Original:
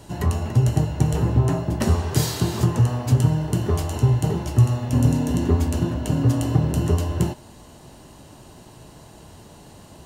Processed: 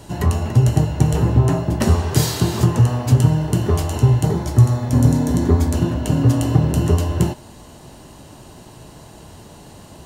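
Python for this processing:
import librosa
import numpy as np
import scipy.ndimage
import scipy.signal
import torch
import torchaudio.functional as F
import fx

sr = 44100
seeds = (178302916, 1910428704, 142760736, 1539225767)

y = fx.notch(x, sr, hz=2800.0, q=5.2, at=(4.25, 5.75))
y = F.gain(torch.from_numpy(y), 4.0).numpy()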